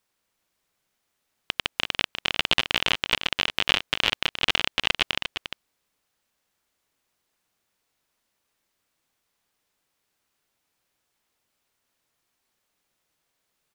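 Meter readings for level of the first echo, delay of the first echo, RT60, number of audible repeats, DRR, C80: −8.5 dB, 351 ms, no reverb audible, 1, no reverb audible, no reverb audible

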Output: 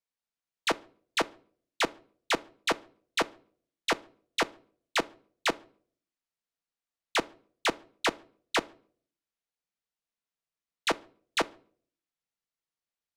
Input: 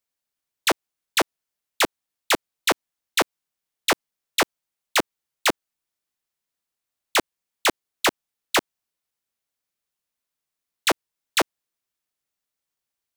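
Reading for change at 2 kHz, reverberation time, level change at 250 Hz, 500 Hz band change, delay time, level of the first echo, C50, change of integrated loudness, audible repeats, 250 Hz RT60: −6.5 dB, 0.50 s, −6.5 dB, −6.0 dB, no echo audible, no echo audible, 23.5 dB, −7.5 dB, no echo audible, 0.60 s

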